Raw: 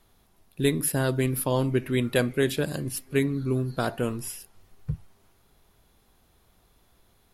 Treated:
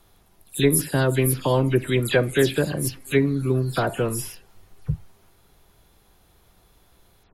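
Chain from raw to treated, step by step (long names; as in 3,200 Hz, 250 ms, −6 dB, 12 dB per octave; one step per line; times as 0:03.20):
every frequency bin delayed by itself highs early, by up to 107 ms
level +5 dB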